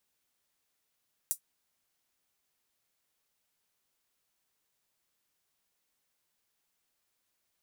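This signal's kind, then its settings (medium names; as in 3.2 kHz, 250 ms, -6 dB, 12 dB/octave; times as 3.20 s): closed hi-hat, high-pass 8.3 kHz, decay 0.10 s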